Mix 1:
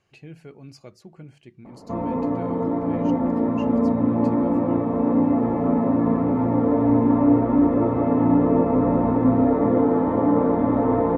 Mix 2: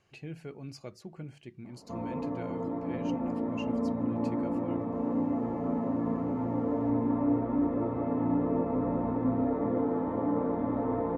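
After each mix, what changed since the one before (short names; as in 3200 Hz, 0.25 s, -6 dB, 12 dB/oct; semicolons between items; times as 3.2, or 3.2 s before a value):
background -10.5 dB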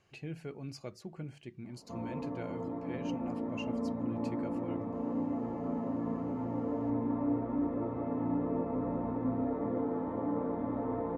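background -4.5 dB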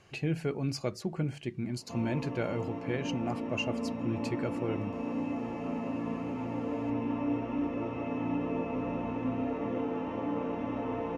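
speech +10.5 dB; background: remove running mean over 16 samples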